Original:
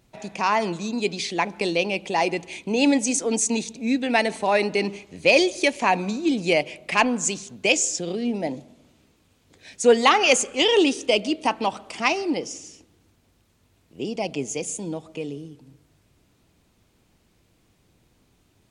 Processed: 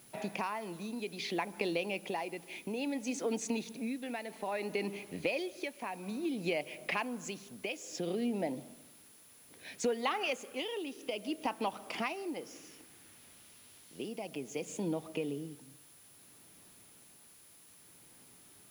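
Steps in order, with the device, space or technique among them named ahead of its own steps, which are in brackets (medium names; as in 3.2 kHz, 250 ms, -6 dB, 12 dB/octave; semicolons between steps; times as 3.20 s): medium wave at night (band-pass 140–3800 Hz; compression, threshold -31 dBFS, peak gain reduction 19 dB; tremolo 0.6 Hz, depth 55%; whistle 10 kHz -60 dBFS; white noise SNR 23 dB); 12.33–14.07 s: peaking EQ 1.2 kHz -> 4.3 kHz +5 dB 1.7 oct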